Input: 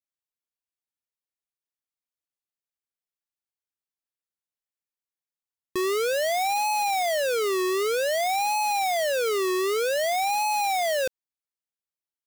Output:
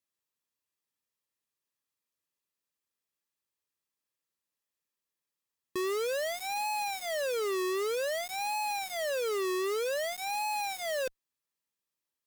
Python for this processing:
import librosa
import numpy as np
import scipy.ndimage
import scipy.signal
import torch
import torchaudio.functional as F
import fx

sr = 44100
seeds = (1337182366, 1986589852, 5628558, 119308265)

y = (np.mod(10.0 ** (28.5 / 20.0) * x + 1.0, 2.0) - 1.0) / 10.0 ** (28.5 / 20.0)
y = fx.notch_comb(y, sr, f0_hz=730.0)
y = fx.cheby_harmonics(y, sr, harmonics=(8,), levels_db=(-23,), full_scale_db=-32.5)
y = y * 10.0 ** (5.5 / 20.0)